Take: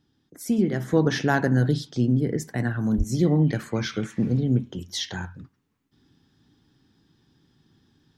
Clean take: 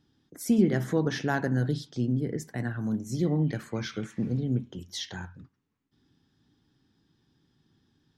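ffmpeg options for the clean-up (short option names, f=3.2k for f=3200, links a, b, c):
-filter_complex "[0:a]asplit=3[a][b][c];[a]afade=t=out:st=2.97:d=0.02[d];[b]highpass=f=140:w=0.5412,highpass=f=140:w=1.3066,afade=t=in:st=2.97:d=0.02,afade=t=out:st=3.09:d=0.02[e];[c]afade=t=in:st=3.09:d=0.02[f];[d][e][f]amix=inputs=3:normalize=0,asetnsamples=n=441:p=0,asendcmd='0.93 volume volume -6dB',volume=0dB"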